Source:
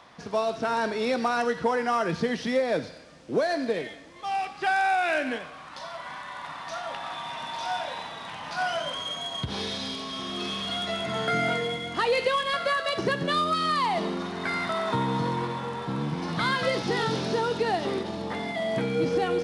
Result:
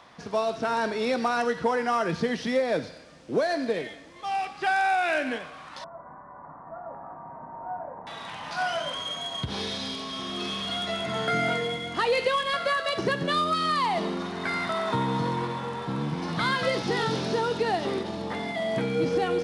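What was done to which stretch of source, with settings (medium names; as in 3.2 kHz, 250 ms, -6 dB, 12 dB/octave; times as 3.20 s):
5.84–8.07 s: Gaussian low-pass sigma 8.4 samples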